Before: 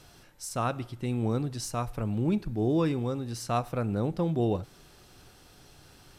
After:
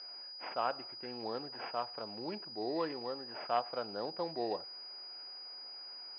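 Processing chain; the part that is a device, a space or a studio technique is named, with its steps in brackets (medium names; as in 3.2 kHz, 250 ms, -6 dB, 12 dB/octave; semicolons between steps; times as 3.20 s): toy sound module (decimation joined by straight lines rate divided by 8×; class-D stage that switches slowly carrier 4.9 kHz; cabinet simulation 710–4000 Hz, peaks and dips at 1.2 kHz -5 dB, 1.9 kHz -4 dB, 3.6 kHz -4 dB); trim +1.5 dB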